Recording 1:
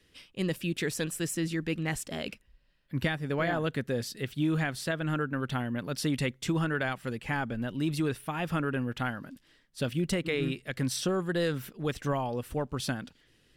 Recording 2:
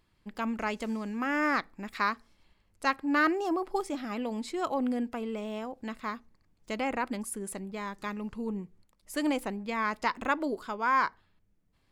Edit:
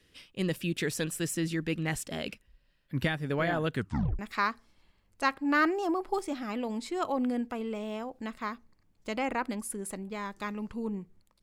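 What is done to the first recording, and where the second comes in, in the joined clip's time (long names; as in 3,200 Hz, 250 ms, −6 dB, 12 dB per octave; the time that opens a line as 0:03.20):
recording 1
0:03.75: tape stop 0.44 s
0:04.19: continue with recording 2 from 0:01.81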